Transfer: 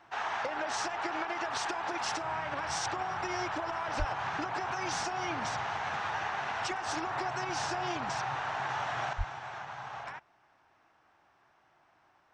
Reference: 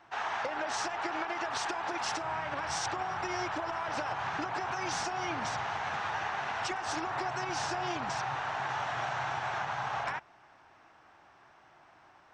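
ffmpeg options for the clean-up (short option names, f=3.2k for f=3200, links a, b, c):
-filter_complex "[0:a]asplit=3[a][b][c];[a]afade=t=out:st=3.98:d=0.02[d];[b]highpass=f=140:w=0.5412,highpass=f=140:w=1.3066,afade=t=in:st=3.98:d=0.02,afade=t=out:st=4.1:d=0.02[e];[c]afade=t=in:st=4.1:d=0.02[f];[d][e][f]amix=inputs=3:normalize=0,asplit=3[g][h][i];[g]afade=t=out:st=9.17:d=0.02[j];[h]highpass=f=140:w=0.5412,highpass=f=140:w=1.3066,afade=t=in:st=9.17:d=0.02,afade=t=out:st=9.29:d=0.02[k];[i]afade=t=in:st=9.29:d=0.02[l];[j][k][l]amix=inputs=3:normalize=0,asetnsamples=n=441:p=0,asendcmd='9.13 volume volume 7.5dB',volume=0dB"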